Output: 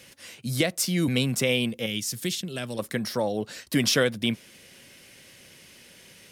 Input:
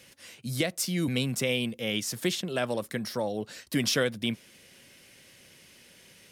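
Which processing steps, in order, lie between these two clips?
1.86–2.79 s: peaking EQ 820 Hz -13 dB 2.7 oct; trim +4 dB

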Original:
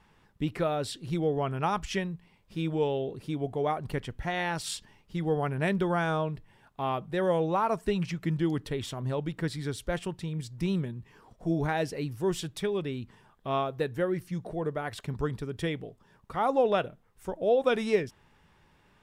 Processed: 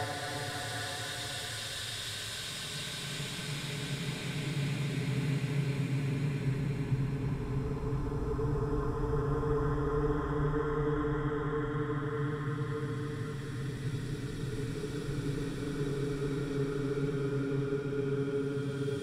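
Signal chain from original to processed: compression, threshold -33 dBFS, peak gain reduction 13.5 dB; Paulstretch 31×, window 0.25 s, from 14.91 s; on a send: repeats whose band climbs or falls 525 ms, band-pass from 1.4 kHz, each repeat 0.7 oct, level -3 dB; on the sum: trim +5 dB

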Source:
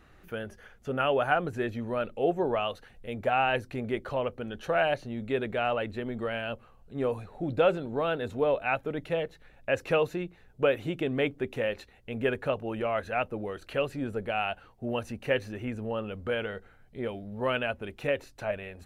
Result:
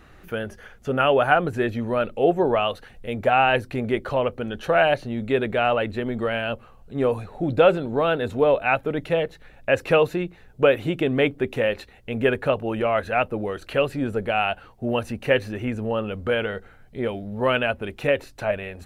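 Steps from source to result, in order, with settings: dynamic bell 6.3 kHz, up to -4 dB, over -59 dBFS, Q 2.9; trim +7.5 dB

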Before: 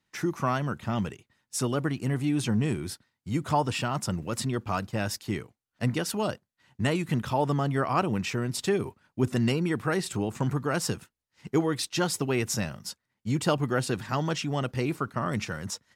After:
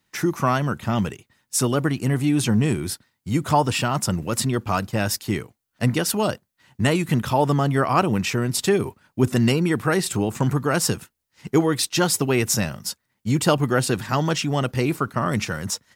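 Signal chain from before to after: treble shelf 11 kHz +10 dB; trim +6.5 dB

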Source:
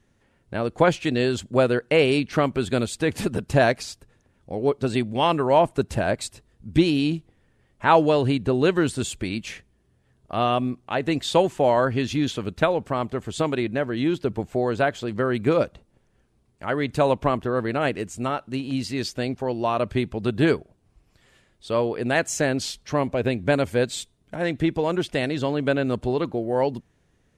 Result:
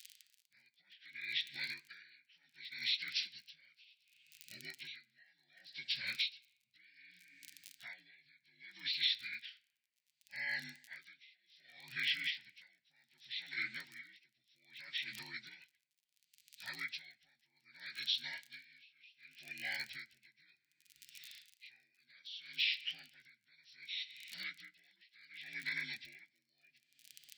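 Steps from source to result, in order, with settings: frequency axis rescaled in octaves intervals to 79%; treble shelf 4.9 kHz +7.5 dB; crackle 35 per s -42 dBFS; peak limiter -15.5 dBFS, peak gain reduction 9.5 dB; inverse Chebyshev high-pass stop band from 1.2 kHz, stop band 40 dB; reverberation RT60 1.6 s, pre-delay 5 ms, DRR 13.5 dB; compression 4:1, threshold -46 dBFS, peak gain reduction 18 dB; logarithmic tremolo 0.66 Hz, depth 31 dB; trim +13 dB

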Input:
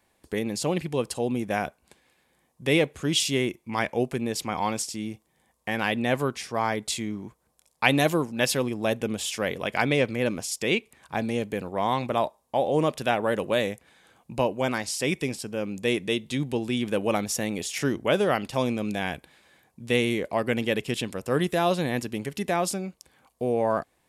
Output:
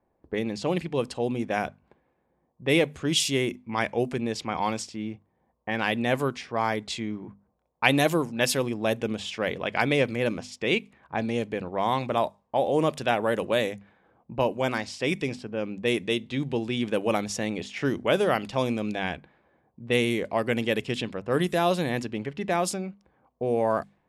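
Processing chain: hum notches 50/100/150/200/250 Hz; level-controlled noise filter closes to 800 Hz, open at -21 dBFS

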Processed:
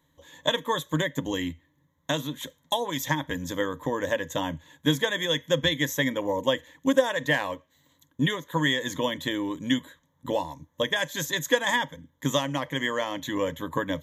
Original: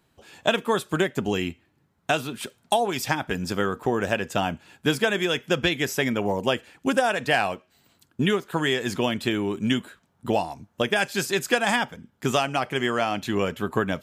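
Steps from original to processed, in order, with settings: rippled EQ curve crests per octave 1.1, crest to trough 16 dB; trim -5 dB

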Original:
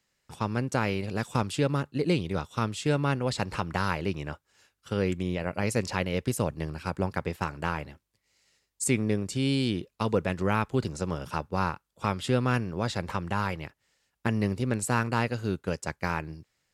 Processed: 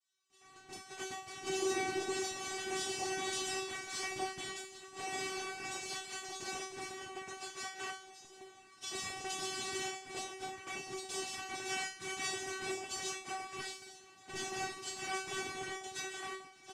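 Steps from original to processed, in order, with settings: companding laws mixed up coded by mu; peaking EQ 5.8 kHz +14.5 dB 3 oct; delay 337 ms -15 dB; gated-style reverb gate 170 ms rising, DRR 0 dB; peak limiter -13.5 dBFS, peak gain reduction 12.5 dB; ever faster or slower copies 605 ms, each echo -3 st, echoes 3; noise-vocoded speech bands 4; 1.41–2.22 s: peaking EQ 340 Hz +9 dB 0.64 oct; gate -23 dBFS, range -15 dB; feedback comb 380 Hz, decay 0.4 s, harmonics all, mix 100%; trim +1.5 dB

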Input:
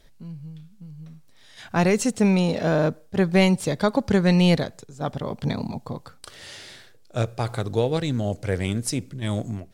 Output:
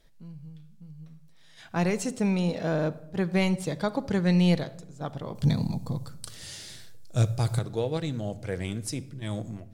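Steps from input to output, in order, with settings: 5.35–7.59 s: tone controls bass +11 dB, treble +12 dB; simulated room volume 2900 m³, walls furnished, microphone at 0.67 m; trim -7 dB

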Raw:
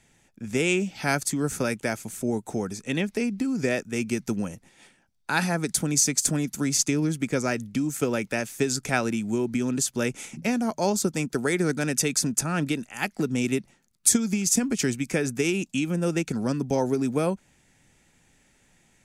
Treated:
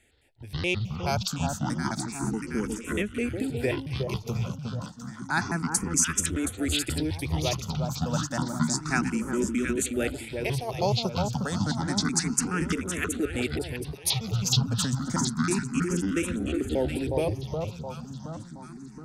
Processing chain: pitch shift switched off and on -10 st, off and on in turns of 106 ms; echo whose repeats swap between lows and highs 361 ms, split 1.2 kHz, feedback 71%, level -4 dB; barber-pole phaser +0.3 Hz

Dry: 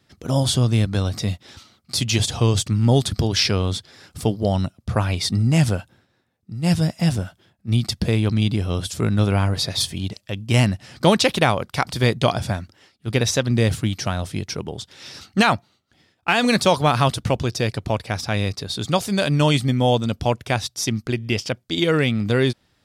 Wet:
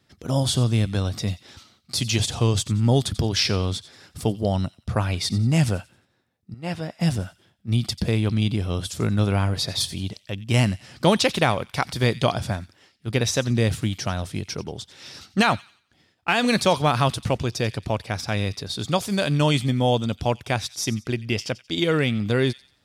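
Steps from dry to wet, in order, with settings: 6.54–7.01 s: tone controls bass -13 dB, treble -14 dB; feedback echo behind a high-pass 90 ms, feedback 33%, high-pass 2.3 kHz, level -15.5 dB; trim -2.5 dB

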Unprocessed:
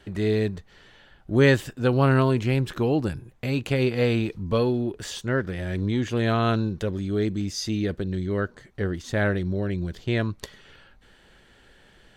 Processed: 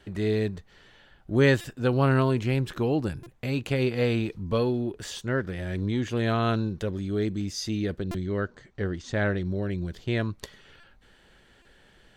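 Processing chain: 7.99–9.45 s: low-pass 7.8 kHz 24 dB/octave; buffer glitch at 1.61/3.23/8.11/10.80/11.62 s, samples 128, times 10; trim -2.5 dB

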